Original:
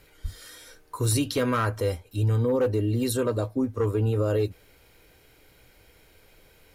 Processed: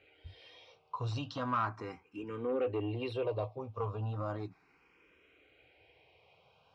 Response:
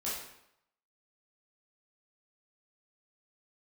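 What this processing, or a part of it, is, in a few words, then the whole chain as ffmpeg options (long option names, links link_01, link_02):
barber-pole phaser into a guitar amplifier: -filter_complex "[0:a]asplit=2[link_01][link_02];[link_02]afreqshift=0.36[link_03];[link_01][link_03]amix=inputs=2:normalize=1,asoftclip=type=tanh:threshold=-20dB,highpass=110,equalizer=frequency=230:width_type=q:width=4:gain=-4,equalizer=frequency=750:width_type=q:width=4:gain=7,equalizer=frequency=1100:width_type=q:width=4:gain=7,equalizer=frequency=1700:width_type=q:width=4:gain=-4,equalizer=frequency=2600:width_type=q:width=4:gain=8,equalizer=frequency=4200:width_type=q:width=4:gain=-6,lowpass=frequency=4500:width=0.5412,lowpass=frequency=4500:width=1.3066,volume=-6dB"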